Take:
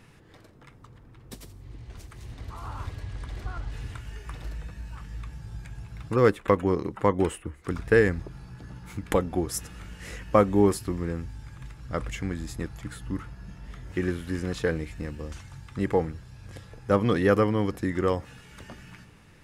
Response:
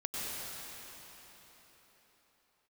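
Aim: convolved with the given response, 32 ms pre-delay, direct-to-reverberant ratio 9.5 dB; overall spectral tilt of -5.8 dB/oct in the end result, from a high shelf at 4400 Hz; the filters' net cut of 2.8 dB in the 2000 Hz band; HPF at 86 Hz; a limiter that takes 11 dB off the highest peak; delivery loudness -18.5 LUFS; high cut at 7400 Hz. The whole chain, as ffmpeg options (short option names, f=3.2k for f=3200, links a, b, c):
-filter_complex "[0:a]highpass=86,lowpass=7.4k,equalizer=f=2k:t=o:g=-5,highshelf=f=4.4k:g=8.5,alimiter=limit=-15.5dB:level=0:latency=1,asplit=2[a][b];[1:a]atrim=start_sample=2205,adelay=32[c];[b][c]afir=irnorm=-1:irlink=0,volume=-14.5dB[d];[a][d]amix=inputs=2:normalize=0,volume=13dB"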